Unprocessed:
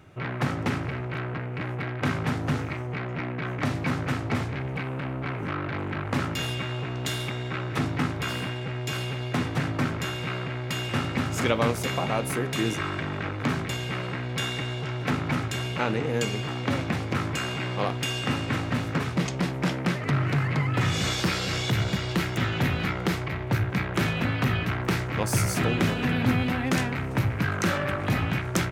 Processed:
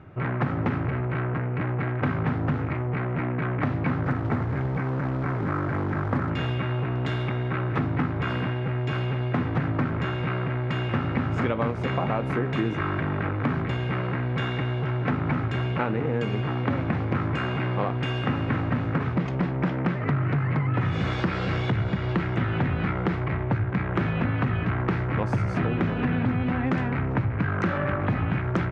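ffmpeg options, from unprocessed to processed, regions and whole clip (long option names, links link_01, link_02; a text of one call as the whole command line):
ffmpeg -i in.wav -filter_complex "[0:a]asettb=1/sr,asplit=3[link_01][link_02][link_03];[link_01]atrim=end=4.034[link_04];[link_02]atrim=start=4.03:end=6.3,asetpts=PTS-STARTPTS,afade=type=in:duration=0.004:curve=qsin,afade=type=out:start_time=2.266:duration=0.004:curve=qsin,lowpass=frequency=2100:width=0.5412,lowpass=frequency=2100:width=1.3066,acrusher=bits=3:mode=log:mix=0:aa=0.000001[link_05];[link_03]atrim=start=6.296[link_06];[link_04][link_05]acrossfade=duration=0.004:curve1=hsin:curve2=qsin[link_07];[link_07][link_06]acrossfade=duration=0.004:curve1=qsin:curve2=hsin,lowpass=1600,equalizer=frequency=570:width_type=o:width=1.7:gain=-2.5,acompressor=threshold=-27dB:ratio=6,volume=6dB" out.wav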